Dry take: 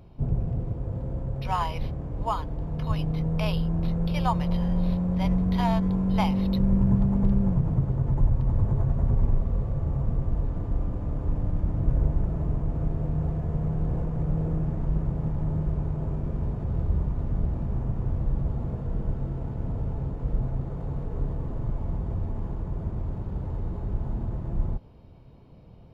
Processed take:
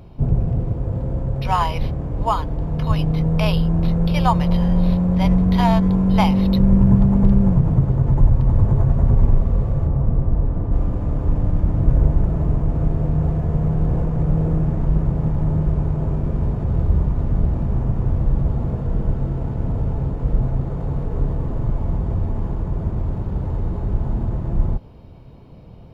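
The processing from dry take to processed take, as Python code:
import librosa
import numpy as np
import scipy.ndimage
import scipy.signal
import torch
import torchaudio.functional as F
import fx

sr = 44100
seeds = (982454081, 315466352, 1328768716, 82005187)

y = fx.high_shelf(x, sr, hz=2500.0, db=-11.5, at=(9.87, 10.73))
y = y * 10.0 ** (8.0 / 20.0)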